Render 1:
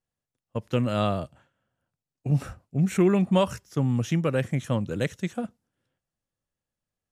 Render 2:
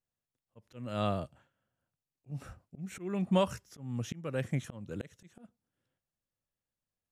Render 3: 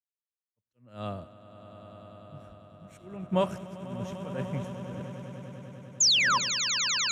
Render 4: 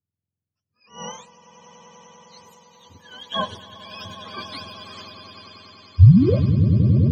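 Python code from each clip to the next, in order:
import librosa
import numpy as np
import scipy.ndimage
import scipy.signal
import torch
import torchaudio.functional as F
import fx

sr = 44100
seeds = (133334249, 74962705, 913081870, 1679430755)

y1 = fx.auto_swell(x, sr, attack_ms=353.0)
y1 = y1 * 10.0 ** (-5.5 / 20.0)
y2 = fx.spec_paint(y1, sr, seeds[0], shape='fall', start_s=6.0, length_s=0.38, low_hz=920.0, high_hz=7400.0, level_db=-24.0)
y2 = fx.echo_swell(y2, sr, ms=99, loudest=8, wet_db=-10.0)
y2 = fx.band_widen(y2, sr, depth_pct=100)
y2 = y2 * 10.0 ** (-5.5 / 20.0)
y3 = fx.octave_mirror(y2, sr, pivot_hz=780.0)
y3 = y3 * 10.0 ** (4.0 / 20.0)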